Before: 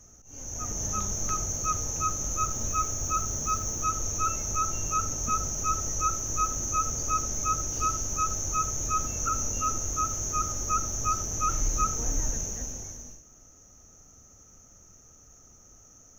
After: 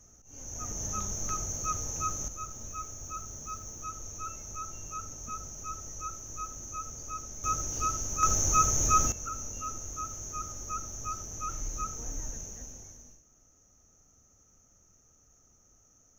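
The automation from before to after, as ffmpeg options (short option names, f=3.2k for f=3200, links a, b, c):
-af "asetnsamples=n=441:p=0,asendcmd='2.28 volume volume -11.5dB;7.44 volume volume -3dB;8.23 volume volume 4dB;9.12 volume volume -9dB',volume=-4dB"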